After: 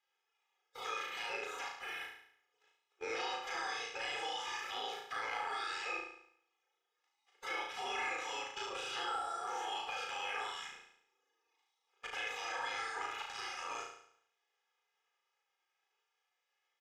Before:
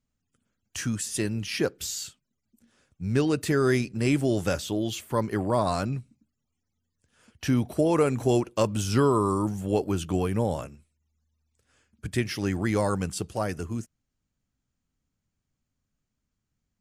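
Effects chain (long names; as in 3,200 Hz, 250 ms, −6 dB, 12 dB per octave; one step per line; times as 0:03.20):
gate on every frequency bin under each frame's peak −25 dB weak
high-pass filter 550 Hz 12 dB per octave
notch filter 4,300 Hz, Q 5.4
comb filter 2.4 ms, depth 80%
harmonic and percussive parts rebalanced percussive −12 dB
leveller curve on the samples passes 2
brickwall limiter −37.5 dBFS, peak gain reduction 10 dB
downward compressor 5 to 1, threshold −53 dBFS, peak gain reduction 10 dB
asymmetric clip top −48.5 dBFS
high-frequency loss of the air 190 metres
flutter between parallel walls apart 6.1 metres, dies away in 0.66 s
level +16.5 dB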